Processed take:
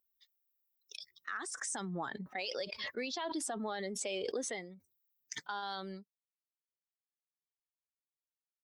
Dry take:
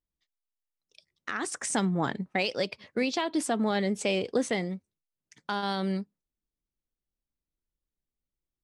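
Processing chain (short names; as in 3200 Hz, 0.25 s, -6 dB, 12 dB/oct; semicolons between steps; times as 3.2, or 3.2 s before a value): per-bin expansion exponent 1.5; weighting filter A; spectral noise reduction 7 dB; bell 2400 Hz -4.5 dB 0.77 oct; limiter -26 dBFS, peak gain reduction 8 dB; backwards sustainer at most 22 dB/s; gain -3 dB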